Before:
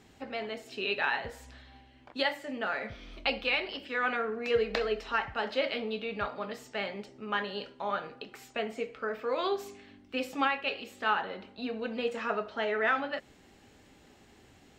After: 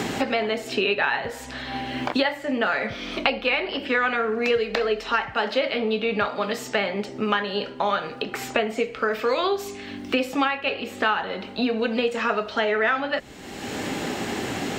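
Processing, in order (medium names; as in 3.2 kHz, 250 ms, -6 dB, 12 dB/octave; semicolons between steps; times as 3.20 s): three bands compressed up and down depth 100%; trim +8 dB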